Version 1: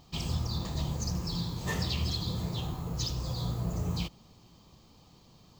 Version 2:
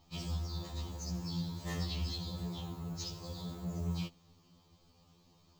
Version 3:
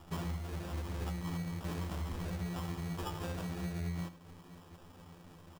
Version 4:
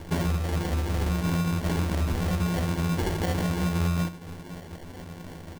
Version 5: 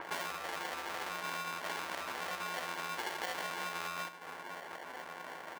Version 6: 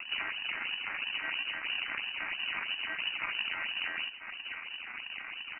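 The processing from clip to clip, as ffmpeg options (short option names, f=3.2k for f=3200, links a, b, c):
-af "afftfilt=real='re*2*eq(mod(b,4),0)':imag='im*2*eq(mod(b,4),0)':win_size=2048:overlap=0.75,volume=-5dB"
-af "acompressor=threshold=-46dB:ratio=10,acrusher=samples=21:mix=1:aa=0.000001,aecho=1:1:81:0.211,volume=10.5dB"
-filter_complex "[0:a]asplit=2[a][b];[b]alimiter=level_in=10.5dB:limit=-24dB:level=0:latency=1:release=229,volume=-10.5dB,volume=0dB[c];[a][c]amix=inputs=2:normalize=0,acrusher=samples=35:mix=1:aa=0.000001,volume=8dB"
-filter_complex "[0:a]highpass=970,acrossover=split=2100[a][b];[a]acompressor=mode=upward:threshold=-30dB:ratio=2.5[c];[c][b]amix=inputs=2:normalize=0,adynamicequalizer=threshold=0.00355:dfrequency=5300:dqfactor=0.7:tfrequency=5300:tqfactor=0.7:attack=5:release=100:ratio=0.375:range=2:mode=cutabove:tftype=highshelf,volume=-3.5dB"
-af "acrusher=samples=30:mix=1:aa=0.000001:lfo=1:lforange=48:lforate=3,lowpass=f=2.6k:t=q:w=0.5098,lowpass=f=2.6k:t=q:w=0.6013,lowpass=f=2.6k:t=q:w=0.9,lowpass=f=2.6k:t=q:w=2.563,afreqshift=-3000,equalizer=f=125:t=o:w=1:g=-5,equalizer=f=250:t=o:w=1:g=4,equalizer=f=500:t=o:w=1:g=-8,volume=4.5dB"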